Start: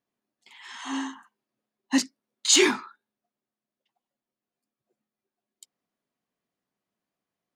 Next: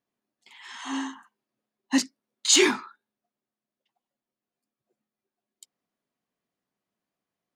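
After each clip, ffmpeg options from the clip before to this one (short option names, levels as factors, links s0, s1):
-af anull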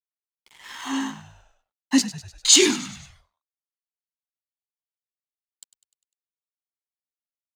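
-filter_complex "[0:a]acrossover=split=390|2700[s0][s1][s2];[s1]acompressor=threshold=0.0178:ratio=6[s3];[s0][s3][s2]amix=inputs=3:normalize=0,aeval=exprs='sgn(val(0))*max(abs(val(0))-0.00299,0)':c=same,asplit=6[s4][s5][s6][s7][s8][s9];[s5]adelay=100,afreqshift=-57,volume=0.188[s10];[s6]adelay=200,afreqshift=-114,volume=0.1[s11];[s7]adelay=300,afreqshift=-171,volume=0.0531[s12];[s8]adelay=400,afreqshift=-228,volume=0.0282[s13];[s9]adelay=500,afreqshift=-285,volume=0.0148[s14];[s4][s10][s11][s12][s13][s14]amix=inputs=6:normalize=0,volume=1.88"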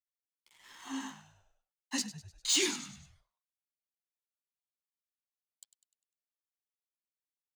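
-filter_complex "[0:a]acrossover=split=4300[s0][s1];[s0]flanger=delay=5.4:depth=9.1:regen=-26:speed=1.2:shape=sinusoidal[s2];[s1]asoftclip=type=tanh:threshold=0.126[s3];[s2][s3]amix=inputs=2:normalize=0,acrossover=split=600[s4][s5];[s4]aeval=exprs='val(0)*(1-0.5/2+0.5/2*cos(2*PI*1.3*n/s))':c=same[s6];[s5]aeval=exprs='val(0)*(1-0.5/2-0.5/2*cos(2*PI*1.3*n/s))':c=same[s7];[s6][s7]amix=inputs=2:normalize=0,volume=0.447"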